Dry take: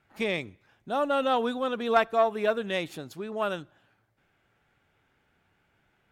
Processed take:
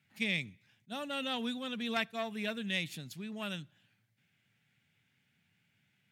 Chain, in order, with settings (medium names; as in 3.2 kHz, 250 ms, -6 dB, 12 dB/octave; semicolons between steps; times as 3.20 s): high-pass 110 Hz 24 dB/octave; high-order bell 660 Hz -15.5 dB 2.6 oct; attacks held to a fixed rise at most 530 dB/s